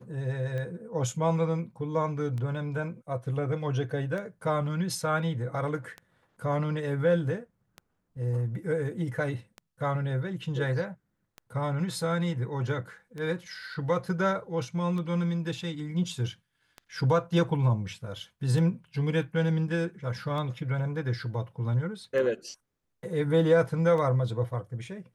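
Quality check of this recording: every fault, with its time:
scratch tick 33 1/3 rpm −25 dBFS

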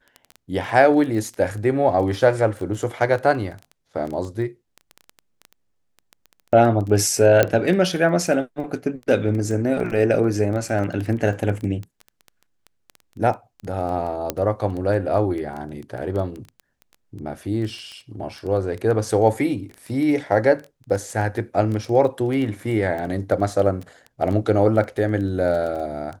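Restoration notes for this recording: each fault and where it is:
surface crackle 10 per second −27 dBFS
0:07.43: click −4 dBFS
0:14.30: click −7 dBFS

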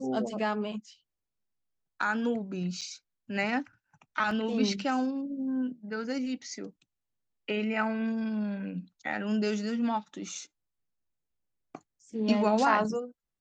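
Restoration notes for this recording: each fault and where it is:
0:02.81–0:02.82: drop-out 6.6 ms
0:04.31: drop-out 2.8 ms

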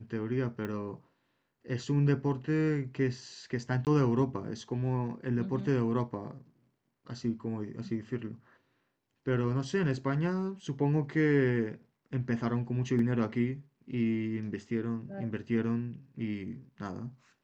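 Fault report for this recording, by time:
0:00.65: click −24 dBFS
0:03.85–0:03.87: drop-out 18 ms
0:12.99: drop-out 2.6 ms

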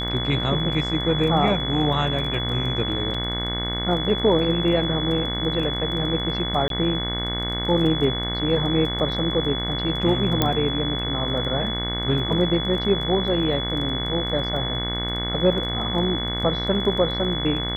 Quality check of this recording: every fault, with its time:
mains buzz 60 Hz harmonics 37 −29 dBFS
surface crackle 14 per second −31 dBFS
whistle 3,400 Hz −27 dBFS
0:03.14: drop-out 4.6 ms
0:06.68–0:06.70: drop-out 22 ms
0:10.42: click −5 dBFS

